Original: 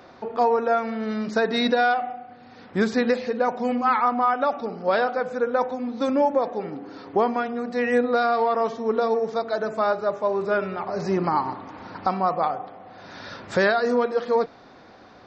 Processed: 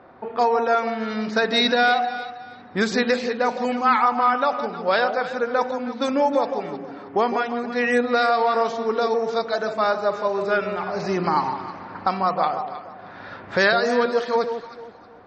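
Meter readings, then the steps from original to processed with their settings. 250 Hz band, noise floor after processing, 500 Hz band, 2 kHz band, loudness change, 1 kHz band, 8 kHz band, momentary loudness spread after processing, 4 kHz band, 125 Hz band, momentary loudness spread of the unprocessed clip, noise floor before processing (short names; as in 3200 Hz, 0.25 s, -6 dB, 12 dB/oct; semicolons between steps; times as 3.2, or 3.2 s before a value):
0.0 dB, -43 dBFS, +0.5 dB, +4.5 dB, +1.5 dB, +2.0 dB, n/a, 13 LU, +7.5 dB, -0.5 dB, 11 LU, -48 dBFS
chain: low-pass opened by the level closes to 1100 Hz, open at -19 dBFS; tilt shelf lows -5 dB, about 1400 Hz; on a send: echo with dull and thin repeats by turns 0.157 s, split 950 Hz, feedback 51%, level -7 dB; on the sum: gain +3.5 dB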